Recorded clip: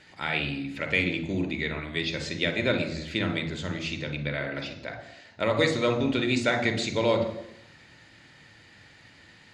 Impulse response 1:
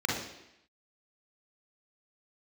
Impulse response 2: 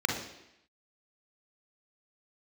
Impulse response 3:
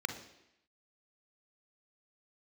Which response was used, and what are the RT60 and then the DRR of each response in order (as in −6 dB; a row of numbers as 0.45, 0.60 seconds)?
3; 0.85, 0.85, 0.85 seconds; −3.5, 1.0, 6.5 decibels